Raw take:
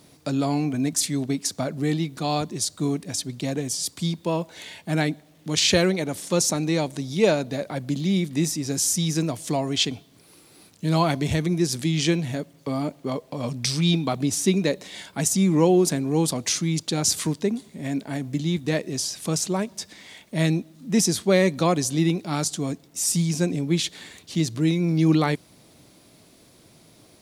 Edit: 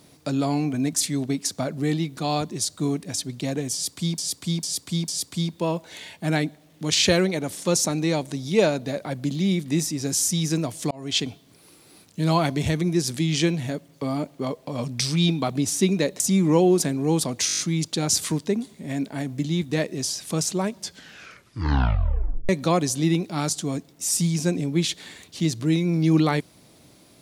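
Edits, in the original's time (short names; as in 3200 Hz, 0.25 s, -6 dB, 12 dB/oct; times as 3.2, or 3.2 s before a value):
3.73–4.18 loop, 4 plays
9.56–9.85 fade in
14.85–15.27 cut
16.54 stutter 0.02 s, 7 plays
19.72 tape stop 1.72 s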